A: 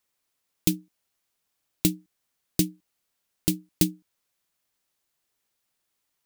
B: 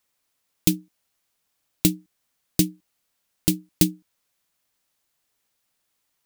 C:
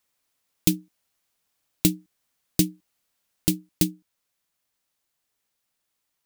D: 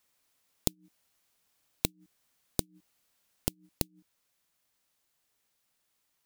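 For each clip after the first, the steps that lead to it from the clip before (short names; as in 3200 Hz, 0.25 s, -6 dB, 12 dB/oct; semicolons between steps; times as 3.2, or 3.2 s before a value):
notch 380 Hz, Q 12; gain +3.5 dB
vocal rider 0.5 s; gain -2 dB
flipped gate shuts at -14 dBFS, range -35 dB; gain +1.5 dB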